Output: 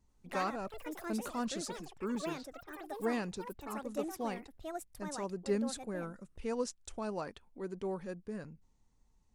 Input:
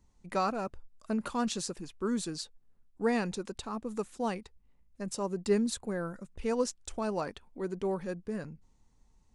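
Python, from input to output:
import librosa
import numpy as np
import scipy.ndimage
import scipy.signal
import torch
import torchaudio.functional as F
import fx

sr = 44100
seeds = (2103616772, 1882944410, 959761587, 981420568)

y = fx.env_lowpass(x, sr, base_hz=310.0, full_db=-29.0, at=(2.15, 3.67))
y = fx.wow_flutter(y, sr, seeds[0], rate_hz=2.1, depth_cents=16.0)
y = fx.echo_pitch(y, sr, ms=86, semitones=6, count=3, db_per_echo=-6.0)
y = F.gain(torch.from_numpy(y), -5.5).numpy()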